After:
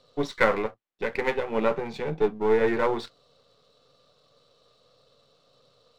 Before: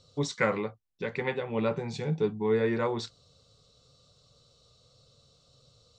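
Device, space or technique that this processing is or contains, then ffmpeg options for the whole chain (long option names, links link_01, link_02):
crystal radio: -af "highpass=280,lowpass=2900,aeval=exprs='if(lt(val(0),0),0.447*val(0),val(0))':channel_layout=same,volume=8dB"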